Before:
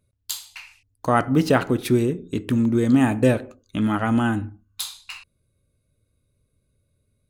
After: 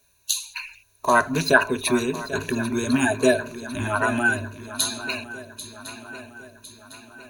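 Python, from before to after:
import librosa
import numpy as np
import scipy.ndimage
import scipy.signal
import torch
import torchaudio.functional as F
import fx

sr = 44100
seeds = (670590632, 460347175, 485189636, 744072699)

p1 = fx.spec_quant(x, sr, step_db=30)
p2 = fx.peak_eq(p1, sr, hz=170.0, db=-14.0, octaves=2.9)
p3 = fx.dmg_noise_colour(p2, sr, seeds[0], colour='white', level_db=-71.0)
p4 = fx.ripple_eq(p3, sr, per_octave=1.5, db=15)
p5 = p4 + fx.echo_swing(p4, sr, ms=1055, ratio=3, feedback_pct=49, wet_db=-14, dry=0)
y = p5 * librosa.db_to_amplitude(4.0)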